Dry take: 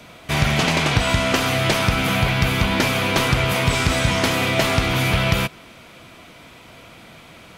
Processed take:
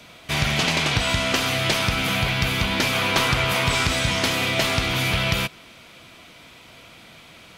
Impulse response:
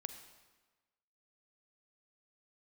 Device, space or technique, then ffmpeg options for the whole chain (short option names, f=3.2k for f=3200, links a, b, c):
presence and air boost: -filter_complex "[0:a]equalizer=f=3.9k:t=o:w=2:g=5.5,highshelf=f=9.1k:g=3.5,asettb=1/sr,asplit=3[a][b][c];[a]atrim=end=2.934[d];[b]atrim=start=2.93:end=3.87,asetpts=PTS-STARTPTS,afade=t=in:d=0.004:c=qsin,afade=t=out:st=0.936:d=0.004:c=qsin,equalizer=f=1.1k:t=o:w=1.5:g=4[e];[c]atrim=start=3.866[f];[d][e]acrossfade=d=0.004:c1=hsin:c2=qsin[g];[g][f]acrossfade=d=0.004:c1=qsin:c2=hsin,volume=-5dB"